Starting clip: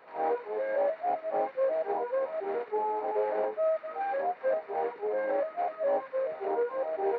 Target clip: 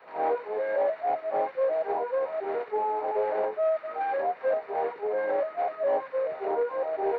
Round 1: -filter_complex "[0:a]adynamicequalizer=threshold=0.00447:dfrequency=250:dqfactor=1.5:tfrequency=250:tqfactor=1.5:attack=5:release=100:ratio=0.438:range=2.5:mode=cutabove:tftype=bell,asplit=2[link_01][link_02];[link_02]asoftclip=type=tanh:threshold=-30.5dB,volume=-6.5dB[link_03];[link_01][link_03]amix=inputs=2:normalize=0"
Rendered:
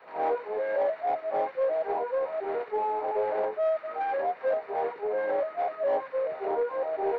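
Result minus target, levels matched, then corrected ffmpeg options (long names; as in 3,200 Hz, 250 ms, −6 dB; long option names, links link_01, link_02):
soft clipping: distortion +7 dB
-filter_complex "[0:a]adynamicequalizer=threshold=0.00447:dfrequency=250:dqfactor=1.5:tfrequency=250:tqfactor=1.5:attack=5:release=100:ratio=0.438:range=2.5:mode=cutabove:tftype=bell,asplit=2[link_01][link_02];[link_02]asoftclip=type=tanh:threshold=-24.5dB,volume=-6.5dB[link_03];[link_01][link_03]amix=inputs=2:normalize=0"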